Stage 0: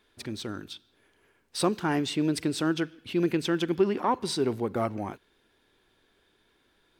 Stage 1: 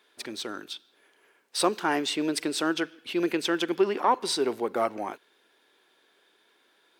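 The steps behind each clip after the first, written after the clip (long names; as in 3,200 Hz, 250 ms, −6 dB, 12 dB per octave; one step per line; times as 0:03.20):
high-pass filter 400 Hz 12 dB per octave
level +4 dB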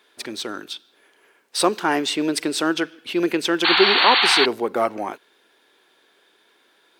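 sound drawn into the spectrogram noise, 0:03.64–0:04.46, 700–4,600 Hz −23 dBFS
level +5.5 dB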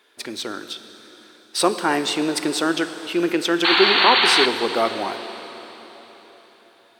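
dense smooth reverb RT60 4.2 s, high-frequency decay 0.95×, DRR 9 dB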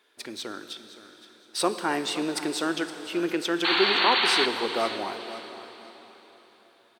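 repeating echo 517 ms, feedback 27%, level −15 dB
level −6.5 dB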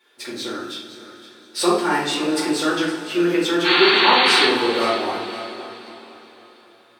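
rectangular room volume 94 cubic metres, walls mixed, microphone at 2.3 metres
level −2.5 dB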